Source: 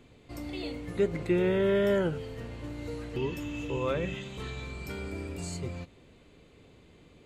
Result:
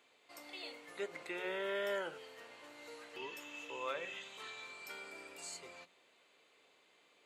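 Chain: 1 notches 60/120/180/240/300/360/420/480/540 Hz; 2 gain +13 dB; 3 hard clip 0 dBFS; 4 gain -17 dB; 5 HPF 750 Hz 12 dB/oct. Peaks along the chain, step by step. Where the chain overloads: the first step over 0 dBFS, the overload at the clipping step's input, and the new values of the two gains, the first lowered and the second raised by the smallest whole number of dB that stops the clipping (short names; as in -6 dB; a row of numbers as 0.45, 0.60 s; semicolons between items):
-16.0, -3.0, -3.0, -20.0, -28.0 dBFS; no overload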